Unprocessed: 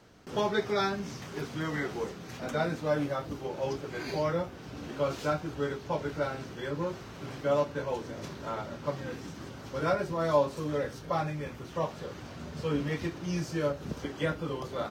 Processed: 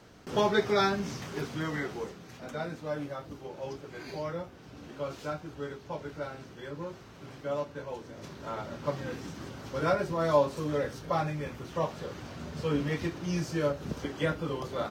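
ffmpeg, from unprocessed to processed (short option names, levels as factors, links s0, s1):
-af "volume=3.16,afade=t=out:st=1.08:d=1.26:silence=0.354813,afade=t=in:st=8.11:d=0.76:silence=0.446684"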